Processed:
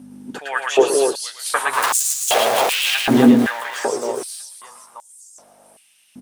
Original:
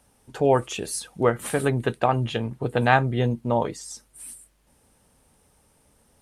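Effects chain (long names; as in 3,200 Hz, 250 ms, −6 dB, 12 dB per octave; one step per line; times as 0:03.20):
0:01.73–0:02.95: sign of each sample alone
reverse bouncing-ball delay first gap 110 ms, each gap 1.5×, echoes 5
mains hum 50 Hz, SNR 18 dB
echo with shifted repeats 119 ms, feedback 53%, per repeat +150 Hz, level −16 dB
high-pass on a step sequencer 2.6 Hz 250–7,000 Hz
level +4.5 dB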